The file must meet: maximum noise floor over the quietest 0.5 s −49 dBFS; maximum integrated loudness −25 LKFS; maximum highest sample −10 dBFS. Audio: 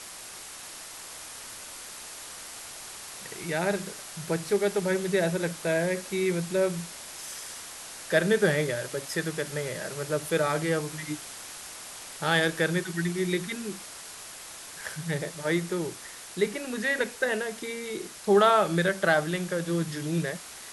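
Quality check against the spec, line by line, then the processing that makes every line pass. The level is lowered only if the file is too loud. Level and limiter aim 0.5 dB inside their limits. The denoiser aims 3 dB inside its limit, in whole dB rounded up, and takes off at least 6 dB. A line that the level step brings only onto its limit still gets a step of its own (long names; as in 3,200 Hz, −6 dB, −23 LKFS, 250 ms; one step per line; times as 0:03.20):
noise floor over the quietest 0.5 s −43 dBFS: out of spec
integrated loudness −28.5 LKFS: in spec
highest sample −8.5 dBFS: out of spec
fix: broadband denoise 9 dB, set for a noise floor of −43 dBFS
brickwall limiter −10.5 dBFS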